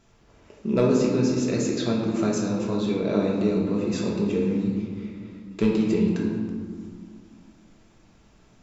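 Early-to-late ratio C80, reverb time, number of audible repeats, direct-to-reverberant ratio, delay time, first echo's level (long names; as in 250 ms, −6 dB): 3.5 dB, 2.0 s, no echo audible, −3.0 dB, no echo audible, no echo audible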